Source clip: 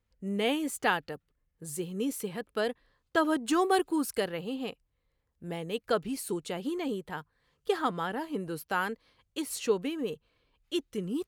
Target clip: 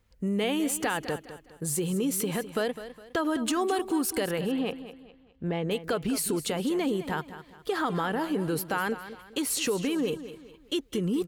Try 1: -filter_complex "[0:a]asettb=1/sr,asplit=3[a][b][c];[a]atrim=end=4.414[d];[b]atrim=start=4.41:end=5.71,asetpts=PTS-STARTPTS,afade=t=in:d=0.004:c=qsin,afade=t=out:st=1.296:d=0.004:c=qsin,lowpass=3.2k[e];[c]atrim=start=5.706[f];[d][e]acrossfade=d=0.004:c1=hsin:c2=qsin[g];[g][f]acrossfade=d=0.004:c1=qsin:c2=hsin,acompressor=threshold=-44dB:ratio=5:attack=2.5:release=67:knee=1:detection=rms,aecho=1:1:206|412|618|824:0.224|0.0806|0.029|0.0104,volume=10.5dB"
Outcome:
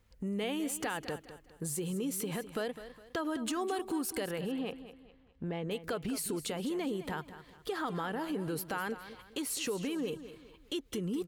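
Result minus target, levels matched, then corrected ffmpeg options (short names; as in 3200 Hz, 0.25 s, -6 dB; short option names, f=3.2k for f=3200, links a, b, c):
compressor: peak gain reduction +7 dB
-filter_complex "[0:a]asettb=1/sr,asplit=3[a][b][c];[a]atrim=end=4.414[d];[b]atrim=start=4.41:end=5.71,asetpts=PTS-STARTPTS,afade=t=in:d=0.004:c=qsin,afade=t=out:st=1.296:d=0.004:c=qsin,lowpass=3.2k[e];[c]atrim=start=5.706[f];[d][e]acrossfade=d=0.004:c1=hsin:c2=qsin[g];[g][f]acrossfade=d=0.004:c1=qsin:c2=hsin,acompressor=threshold=-35dB:ratio=5:attack=2.5:release=67:knee=1:detection=rms,aecho=1:1:206|412|618|824:0.224|0.0806|0.029|0.0104,volume=10.5dB"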